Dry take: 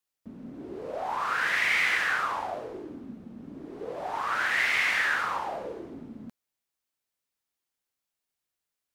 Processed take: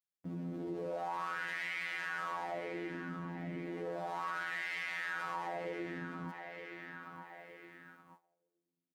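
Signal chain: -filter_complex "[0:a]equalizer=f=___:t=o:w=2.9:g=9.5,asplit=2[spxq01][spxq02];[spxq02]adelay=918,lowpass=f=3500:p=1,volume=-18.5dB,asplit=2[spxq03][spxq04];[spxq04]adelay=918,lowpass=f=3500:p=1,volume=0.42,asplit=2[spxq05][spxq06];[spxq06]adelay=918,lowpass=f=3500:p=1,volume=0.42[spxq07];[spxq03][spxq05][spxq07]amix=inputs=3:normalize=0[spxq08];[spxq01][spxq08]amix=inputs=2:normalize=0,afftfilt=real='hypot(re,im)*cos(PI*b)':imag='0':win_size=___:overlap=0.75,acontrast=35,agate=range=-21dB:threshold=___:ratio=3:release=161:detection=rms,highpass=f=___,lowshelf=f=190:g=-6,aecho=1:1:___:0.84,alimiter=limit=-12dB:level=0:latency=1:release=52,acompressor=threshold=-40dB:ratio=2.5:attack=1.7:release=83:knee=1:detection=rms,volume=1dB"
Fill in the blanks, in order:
99, 2048, -53dB, 61, 6.2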